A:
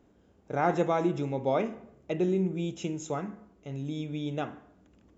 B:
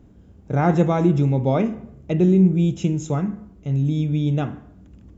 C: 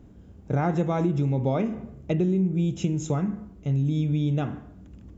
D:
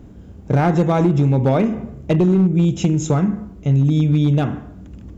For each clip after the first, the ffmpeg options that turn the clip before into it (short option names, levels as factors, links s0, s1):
-af "bass=f=250:g=15,treble=f=4000:g=1,volume=1.58"
-af "acompressor=threshold=0.0891:ratio=5"
-af "asoftclip=type=hard:threshold=0.119,volume=2.82"